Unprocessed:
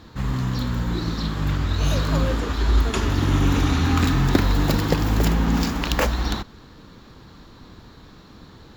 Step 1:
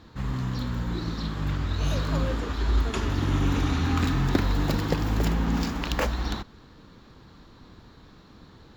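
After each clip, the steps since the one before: high shelf 7400 Hz -5.5 dB; gain -5 dB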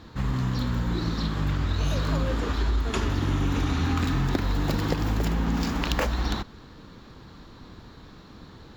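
compressor, threshold -25 dBFS, peak gain reduction 9 dB; gain +4 dB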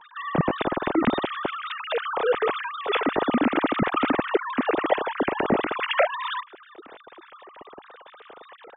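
sine-wave speech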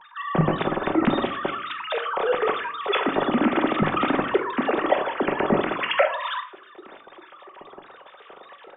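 shoebox room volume 600 m³, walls furnished, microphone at 1.1 m

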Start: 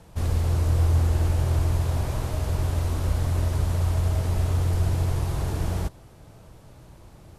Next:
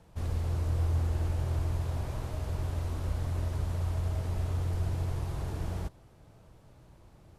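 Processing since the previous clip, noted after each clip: high shelf 5500 Hz -5 dB; gain -8 dB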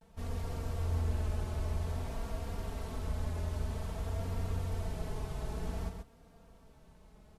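comb 4.5 ms, depth 79%; vibrato 0.52 Hz 61 cents; on a send: echo 0.132 s -5.5 dB; on the sum: gain -4.5 dB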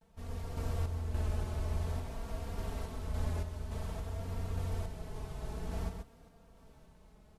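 random-step tremolo; gain +1.5 dB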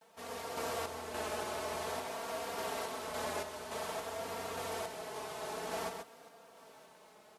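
HPF 490 Hz 12 dB/oct; gain +9.5 dB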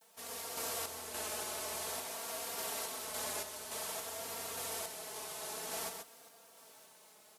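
pre-emphasis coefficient 0.8; gain +7.5 dB

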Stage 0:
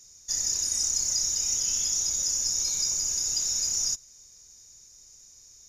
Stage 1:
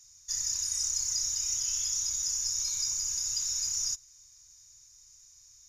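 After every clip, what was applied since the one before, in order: FFT band-reject 150–880 Hz; gain -4 dB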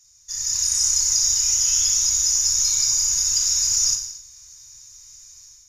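AGC gain up to 10 dB; non-linear reverb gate 0.3 s falling, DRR 3 dB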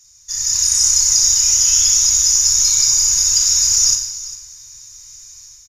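echo 0.401 s -16 dB; gain +6 dB

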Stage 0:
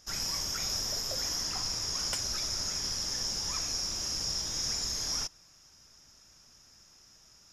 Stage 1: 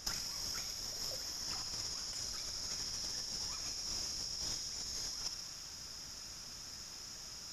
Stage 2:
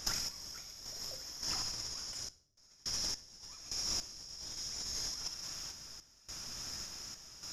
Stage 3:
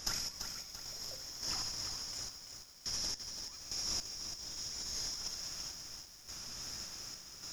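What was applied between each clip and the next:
negative-ratio compressor -40 dBFS, ratio -0.5; thin delay 65 ms, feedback 76%, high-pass 2000 Hz, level -7.5 dB
random-step tremolo, depth 100%; on a send at -15.5 dB: reverb RT60 0.70 s, pre-delay 3 ms; on the sum: gain +5 dB
lo-fi delay 0.338 s, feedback 55%, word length 9-bit, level -6.5 dB; gain -1 dB

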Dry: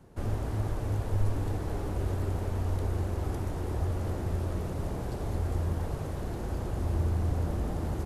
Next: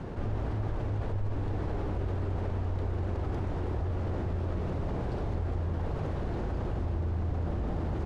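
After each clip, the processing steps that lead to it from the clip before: LPF 3600 Hz 12 dB/oct; fast leveller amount 70%; gain -7 dB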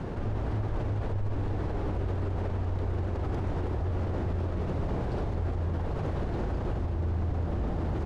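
limiter -26 dBFS, peak gain reduction 5 dB; gain +3.5 dB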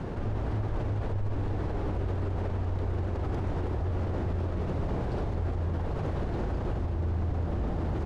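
nothing audible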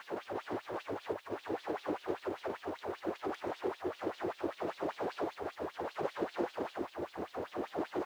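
bit-crush 11-bit; LFO high-pass sine 5.1 Hz 320–3800 Hz; gain -1.5 dB

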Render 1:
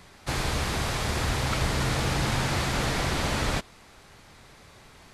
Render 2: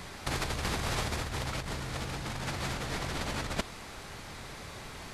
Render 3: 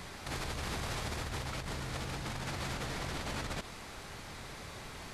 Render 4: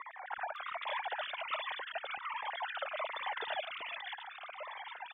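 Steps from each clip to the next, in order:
negative-ratio compressor -32 dBFS, ratio -0.5
limiter -26 dBFS, peak gain reduction 9.5 dB; gain -2 dB
sine-wave speech; three bands offset in time mids, lows, highs 0.38/0.56 s, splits 300/1900 Hz; cascading phaser falling 1.3 Hz; gain +3 dB

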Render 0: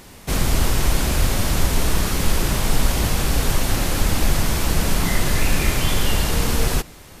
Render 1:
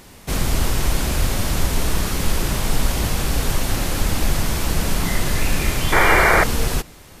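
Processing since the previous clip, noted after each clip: painted sound noise, 5.92–6.44, 310–2400 Hz -14 dBFS; gain -1 dB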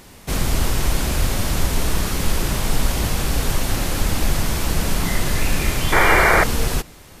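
nothing audible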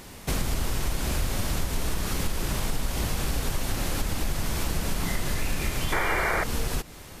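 compressor 4:1, threshold -24 dBFS, peak gain reduction 12 dB

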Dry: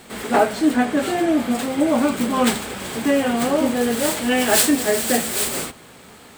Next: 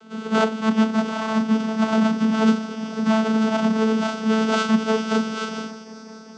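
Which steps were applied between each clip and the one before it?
sample sorter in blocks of 32 samples; multi-head echo 0.195 s, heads second and third, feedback 59%, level -19 dB; vocoder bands 16, saw 220 Hz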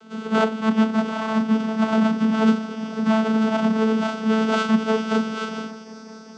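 dynamic EQ 6200 Hz, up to -5 dB, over -48 dBFS, Q 0.87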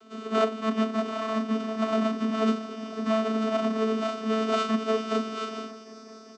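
comb 2.9 ms, depth 87%; gain -6 dB

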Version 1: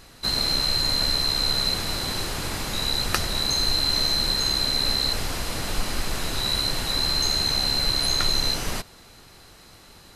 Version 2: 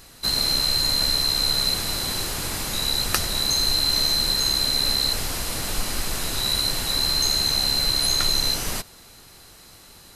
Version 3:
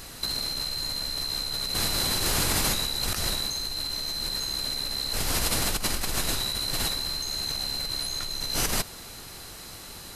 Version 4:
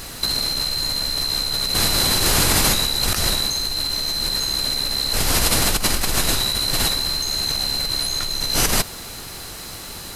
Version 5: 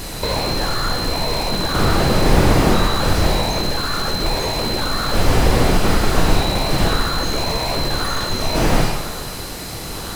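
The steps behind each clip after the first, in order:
high shelf 6500 Hz +10 dB; gain -1 dB
negative-ratio compressor -29 dBFS, ratio -1
added noise blue -63 dBFS; gain +8 dB
in parallel at -4 dB: decimation with a swept rate 22×, swing 60% 0.96 Hz; on the sum: reverb RT60 1.2 s, pre-delay 17 ms, DRR 2 dB; slew limiter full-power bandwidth 210 Hz; gain +1.5 dB

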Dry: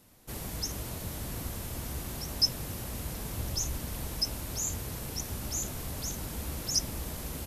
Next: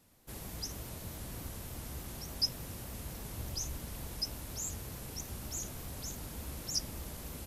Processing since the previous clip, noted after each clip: shaped vibrato saw up 3.4 Hz, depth 100 cents; gain -6 dB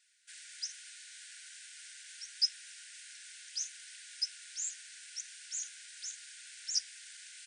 FFT band-pass 1400–9700 Hz; gain +2 dB

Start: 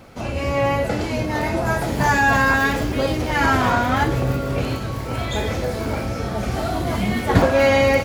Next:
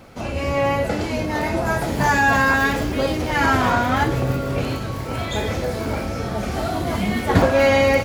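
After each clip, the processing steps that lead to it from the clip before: notches 60/120 Hz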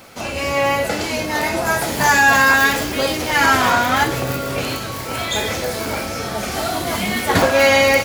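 tilt +2.5 dB/oct; gain +3.5 dB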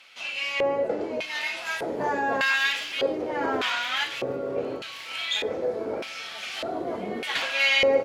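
LFO band-pass square 0.83 Hz 440–2900 Hz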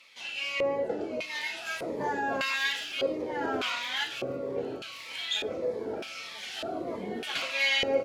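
cascading phaser falling 1.6 Hz; gain -2.5 dB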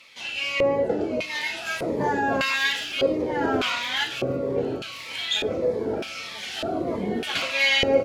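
low shelf 220 Hz +9.5 dB; gain +5.5 dB

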